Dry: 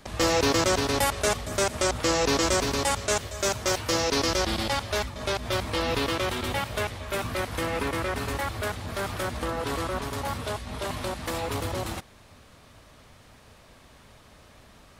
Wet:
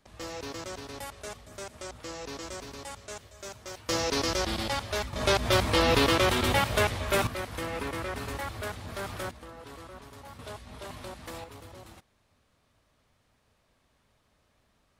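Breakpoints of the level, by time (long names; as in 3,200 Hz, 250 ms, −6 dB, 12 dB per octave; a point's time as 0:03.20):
−16 dB
from 0:03.89 −3.5 dB
from 0:05.13 +4 dB
from 0:07.27 −5.5 dB
from 0:09.31 −16 dB
from 0:10.39 −10 dB
from 0:11.44 −17 dB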